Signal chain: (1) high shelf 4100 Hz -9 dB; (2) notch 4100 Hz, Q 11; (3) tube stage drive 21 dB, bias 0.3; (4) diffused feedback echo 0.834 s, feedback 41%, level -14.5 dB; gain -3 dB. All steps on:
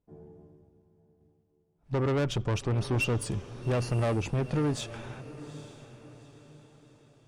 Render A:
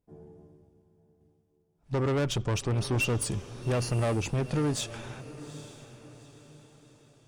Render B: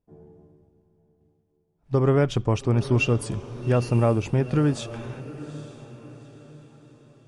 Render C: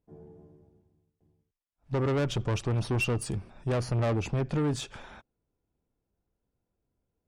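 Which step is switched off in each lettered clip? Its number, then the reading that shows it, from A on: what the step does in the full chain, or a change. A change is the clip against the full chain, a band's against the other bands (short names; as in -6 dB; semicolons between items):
1, 8 kHz band +6.0 dB; 3, crest factor change +3.0 dB; 4, echo-to-direct -13.5 dB to none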